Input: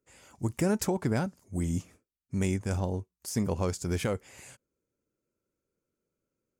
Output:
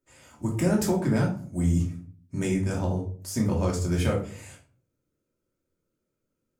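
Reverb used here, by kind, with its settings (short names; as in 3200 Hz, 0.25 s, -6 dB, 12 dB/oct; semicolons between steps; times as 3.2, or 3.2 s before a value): shoebox room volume 380 m³, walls furnished, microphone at 2.7 m; gain -1.5 dB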